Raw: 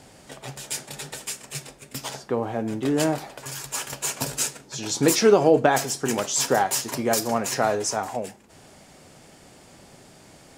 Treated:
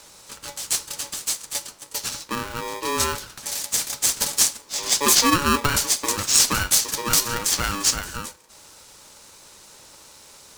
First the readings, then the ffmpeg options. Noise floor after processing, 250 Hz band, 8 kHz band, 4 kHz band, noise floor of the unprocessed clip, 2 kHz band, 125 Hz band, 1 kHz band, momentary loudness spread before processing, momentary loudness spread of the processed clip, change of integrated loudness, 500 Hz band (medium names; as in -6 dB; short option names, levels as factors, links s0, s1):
-49 dBFS, -4.0 dB, +7.5 dB, +8.5 dB, -51 dBFS, +3.5 dB, -1.0 dB, 0.0 dB, 17 LU, 14 LU, +3.0 dB, -10.0 dB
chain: -af "highshelf=f=3300:t=q:w=1.5:g=9.5,aeval=exprs='val(0)*sgn(sin(2*PI*710*n/s))':c=same,volume=0.708"